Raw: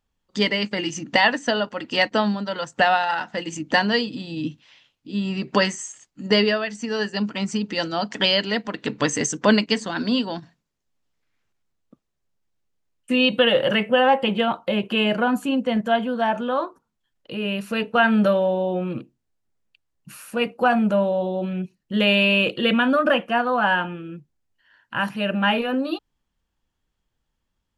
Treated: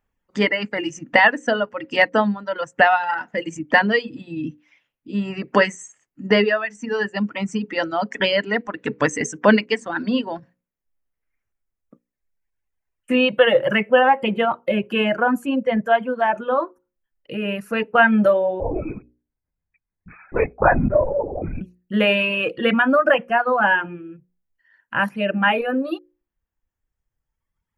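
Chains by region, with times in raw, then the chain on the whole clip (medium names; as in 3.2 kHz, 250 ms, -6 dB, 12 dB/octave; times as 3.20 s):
18.60–21.61 s: brick-wall FIR low-pass 2.6 kHz + LPC vocoder at 8 kHz whisper
whole clip: hum notches 60/120/180/240/300/360/420/480/540 Hz; reverb removal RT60 1.8 s; graphic EQ 500/2000/4000/8000 Hz +3/+6/-12/-4 dB; trim +2 dB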